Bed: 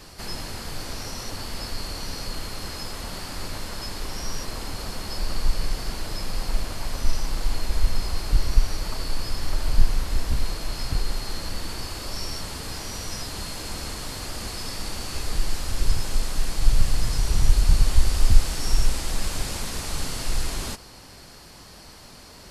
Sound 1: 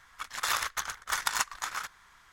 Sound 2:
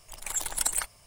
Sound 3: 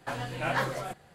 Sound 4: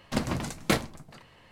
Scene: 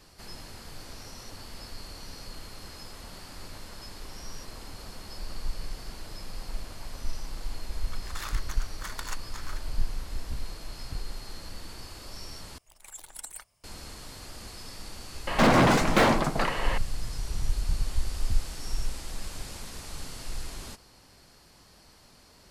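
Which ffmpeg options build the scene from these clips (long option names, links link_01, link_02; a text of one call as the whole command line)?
ffmpeg -i bed.wav -i cue0.wav -i cue1.wav -i cue2.wav -i cue3.wav -filter_complex "[0:a]volume=-10.5dB[link_01];[4:a]asplit=2[link_02][link_03];[link_03]highpass=frequency=720:poles=1,volume=38dB,asoftclip=type=tanh:threshold=-9dB[link_04];[link_02][link_04]amix=inputs=2:normalize=0,lowpass=frequency=1100:poles=1,volume=-6dB[link_05];[link_01]asplit=2[link_06][link_07];[link_06]atrim=end=12.584[link_08];[2:a]atrim=end=1.06,asetpts=PTS-STARTPTS,volume=-14dB[link_09];[link_07]atrim=start=13.636[link_10];[1:a]atrim=end=2.32,asetpts=PTS-STARTPTS,volume=-10dB,afade=type=in:duration=0.004:curve=hsin,afade=type=out:start_time=2.316:duration=0.004:curve=hsin,adelay=7720[link_11];[link_05]atrim=end=1.51,asetpts=PTS-STARTPTS,afade=type=in:duration=0.004:curve=hsin,afade=type=out:start_time=1.506:duration=0.004:curve=hsin,adelay=15270[link_12];[link_08][link_09]acrossfade=duration=0.004:curve1=hsin:curve2=hsin[link_13];[link_13][link_10]acrossfade=duration=0.004:curve1=hsin:curve2=hsin[link_14];[link_14][link_11][link_12]amix=inputs=3:normalize=0" out.wav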